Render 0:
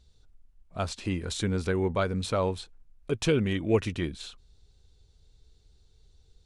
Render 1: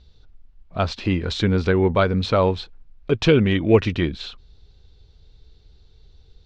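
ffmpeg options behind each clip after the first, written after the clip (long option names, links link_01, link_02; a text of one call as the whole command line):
ffmpeg -i in.wav -af "lowpass=frequency=4800:width=0.5412,lowpass=frequency=4800:width=1.3066,volume=9dB" out.wav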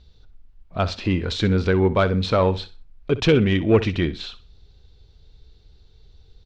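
ffmpeg -i in.wav -af "asoftclip=type=tanh:threshold=-6dB,aecho=1:1:63|126|189:0.168|0.042|0.0105" out.wav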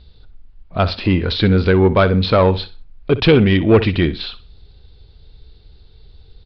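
ffmpeg -i in.wav -af "asoftclip=type=tanh:threshold=-8.5dB,aresample=11025,aresample=44100,volume=6.5dB" out.wav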